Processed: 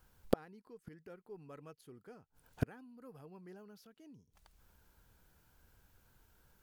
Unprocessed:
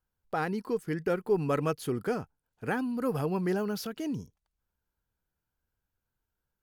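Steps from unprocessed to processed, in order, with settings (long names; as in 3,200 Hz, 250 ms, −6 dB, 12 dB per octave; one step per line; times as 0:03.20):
gate with flip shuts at −34 dBFS, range −41 dB
level +17 dB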